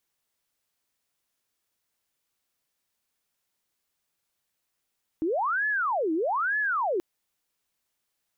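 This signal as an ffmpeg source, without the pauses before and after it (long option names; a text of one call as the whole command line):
ffmpeg -f lavfi -i "aevalsrc='0.0668*sin(2*PI*(1017*t-703/(2*PI*1.1)*sin(2*PI*1.1*t)))':duration=1.78:sample_rate=44100" out.wav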